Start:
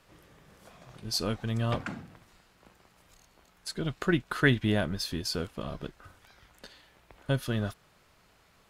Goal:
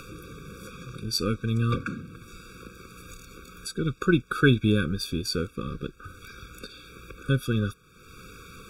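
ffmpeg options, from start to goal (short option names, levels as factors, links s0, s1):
-af "acompressor=mode=upward:threshold=0.0178:ratio=2.5,afftfilt=real='re*eq(mod(floor(b*sr/1024/550),2),0)':imag='im*eq(mod(floor(b*sr/1024/550),2),0)':win_size=1024:overlap=0.75,volume=1.78"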